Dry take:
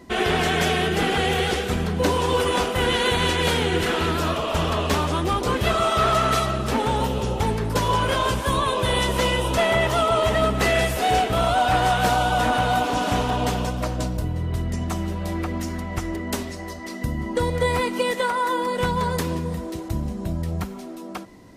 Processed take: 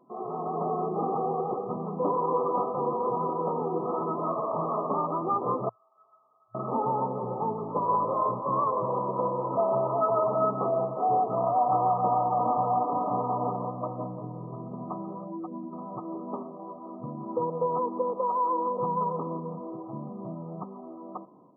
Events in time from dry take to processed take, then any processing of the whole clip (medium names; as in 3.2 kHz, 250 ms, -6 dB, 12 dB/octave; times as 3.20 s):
5.69–6.55 s: band-pass filter 4.7 kHz, Q 16
15.24–15.73 s: spectral contrast enhancement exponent 1.7
whole clip: FFT band-pass 110–1300 Hz; bass shelf 450 Hz -10 dB; level rider gain up to 8 dB; trim -8.5 dB